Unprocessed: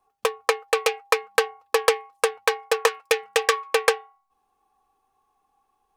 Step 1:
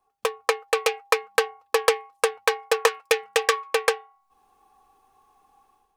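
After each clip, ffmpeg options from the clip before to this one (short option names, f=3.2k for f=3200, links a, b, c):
-af "dynaudnorm=f=120:g=5:m=11.5dB,volume=-2.5dB"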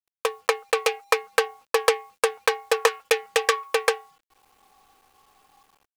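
-af "acrusher=bits=9:mix=0:aa=0.000001"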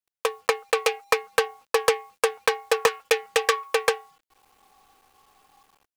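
-af "asoftclip=type=hard:threshold=-9dB"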